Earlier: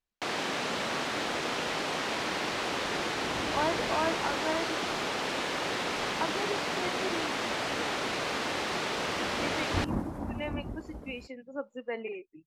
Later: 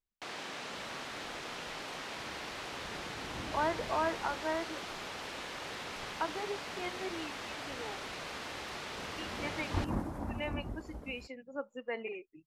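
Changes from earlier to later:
first sound -9.0 dB; master: add peaking EQ 260 Hz -4 dB 2.9 oct

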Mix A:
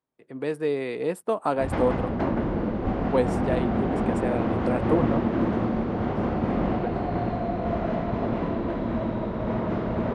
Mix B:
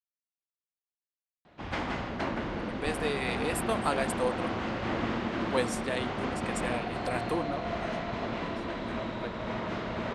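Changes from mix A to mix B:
speech: entry +2.40 s; master: add tilt shelf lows -10 dB, about 1.4 kHz

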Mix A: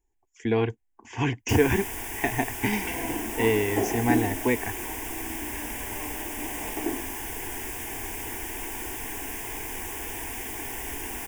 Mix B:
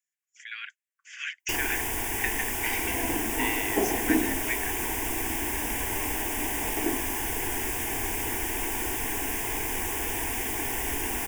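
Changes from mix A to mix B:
speech: add steep high-pass 1.3 kHz 96 dB/octave; first sound +4.5 dB

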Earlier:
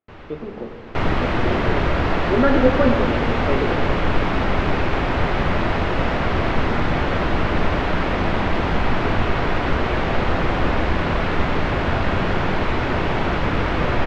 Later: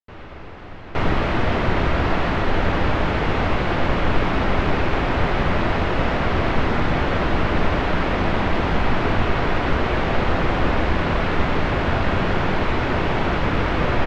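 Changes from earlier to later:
speech: muted; first sound: send +8.5 dB

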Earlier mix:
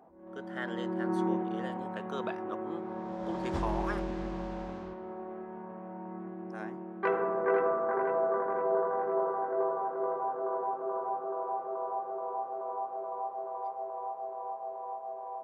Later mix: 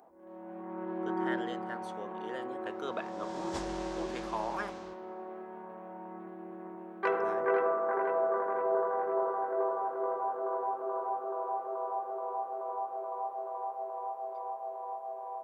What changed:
speech: entry +0.70 s; background: add tone controls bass -11 dB, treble +12 dB

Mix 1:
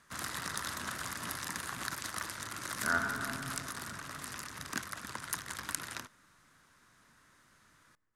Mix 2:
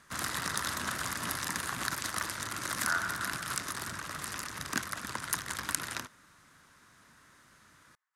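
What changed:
speech: add high-pass 800 Hz 24 dB/octave; background +4.5 dB

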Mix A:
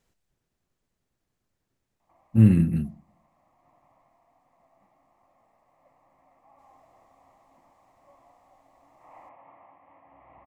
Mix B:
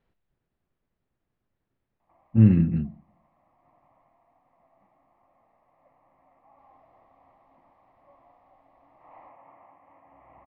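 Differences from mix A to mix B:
speech: add distance through air 100 m; master: add Bessel low-pass 2.9 kHz, order 8

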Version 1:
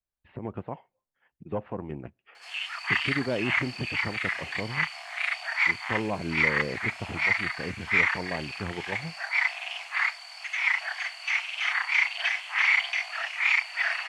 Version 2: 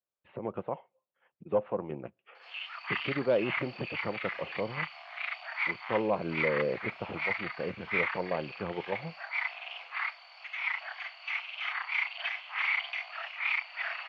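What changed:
background -6.0 dB; master: add cabinet simulation 170–3900 Hz, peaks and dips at 260 Hz -6 dB, 530 Hz +7 dB, 1.2 kHz +3 dB, 1.8 kHz -5 dB

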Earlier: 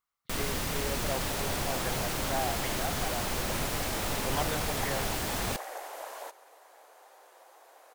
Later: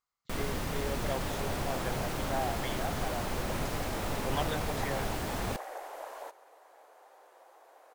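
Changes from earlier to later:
speech: remove low-pass 2.1 kHz 12 dB/octave; master: add treble shelf 2.1 kHz -8.5 dB

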